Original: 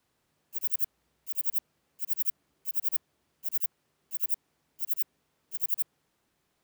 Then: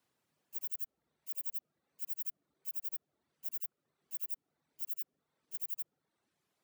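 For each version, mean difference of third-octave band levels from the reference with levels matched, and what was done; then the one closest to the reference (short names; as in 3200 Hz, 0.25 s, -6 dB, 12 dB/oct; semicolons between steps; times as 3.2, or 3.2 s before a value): 1.5 dB: reverb removal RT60 0.82 s; HPF 110 Hz 12 dB/oct; limiter -23 dBFS, peak gain reduction 8.5 dB; gain -4.5 dB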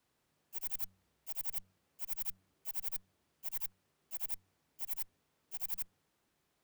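10.5 dB: one diode to ground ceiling -30.5 dBFS; de-hum 94.17 Hz, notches 2; hard clip -29 dBFS, distortion -8 dB; gain -3.5 dB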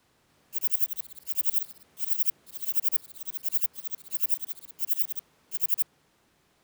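5.0 dB: high shelf 9700 Hz -6 dB; echoes that change speed 0.296 s, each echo +3 st, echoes 3; gain +9 dB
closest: first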